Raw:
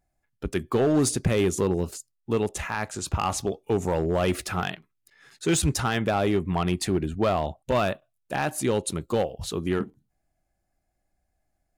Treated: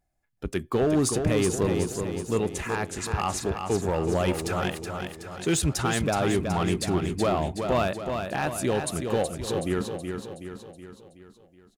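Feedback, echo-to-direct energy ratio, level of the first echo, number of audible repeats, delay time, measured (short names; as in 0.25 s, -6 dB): 52%, -4.5 dB, -6.0 dB, 6, 0.373 s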